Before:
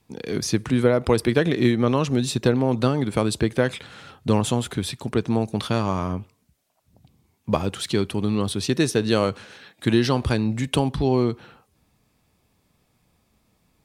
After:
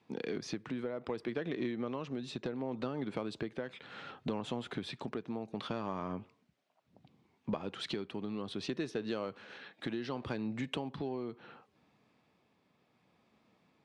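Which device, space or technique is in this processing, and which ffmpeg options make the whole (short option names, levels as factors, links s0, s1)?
AM radio: -af "highpass=190,lowpass=3400,acompressor=threshold=0.0251:ratio=6,asoftclip=type=tanh:threshold=0.0944,tremolo=f=0.67:d=0.27,volume=0.891"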